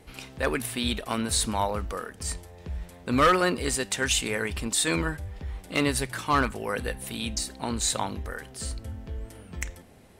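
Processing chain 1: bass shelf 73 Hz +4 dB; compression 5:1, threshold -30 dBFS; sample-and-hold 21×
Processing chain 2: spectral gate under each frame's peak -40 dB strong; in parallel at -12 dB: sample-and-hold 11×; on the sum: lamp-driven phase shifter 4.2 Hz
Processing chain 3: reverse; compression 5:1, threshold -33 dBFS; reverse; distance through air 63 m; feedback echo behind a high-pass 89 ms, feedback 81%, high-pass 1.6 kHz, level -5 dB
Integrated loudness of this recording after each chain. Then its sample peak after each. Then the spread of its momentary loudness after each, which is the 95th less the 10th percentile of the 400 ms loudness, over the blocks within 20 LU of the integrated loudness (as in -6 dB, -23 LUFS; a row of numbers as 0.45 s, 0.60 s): -35.5 LUFS, -30.0 LUFS, -37.0 LUFS; -20.0 dBFS, -10.5 dBFS, -20.5 dBFS; 6 LU, 16 LU, 7 LU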